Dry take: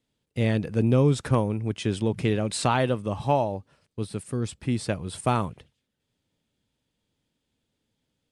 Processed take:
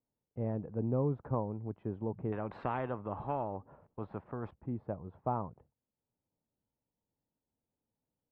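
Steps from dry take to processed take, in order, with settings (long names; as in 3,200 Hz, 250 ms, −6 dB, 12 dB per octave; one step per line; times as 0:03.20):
transistor ladder low-pass 1,100 Hz, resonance 40%
0:02.32–0:04.51: every bin compressed towards the loudest bin 2 to 1
level −4 dB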